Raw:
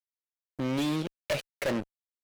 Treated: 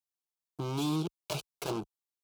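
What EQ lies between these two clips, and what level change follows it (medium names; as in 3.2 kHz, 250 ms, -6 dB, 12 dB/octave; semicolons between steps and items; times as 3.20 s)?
high-pass 43 Hz; static phaser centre 370 Hz, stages 8; +1.0 dB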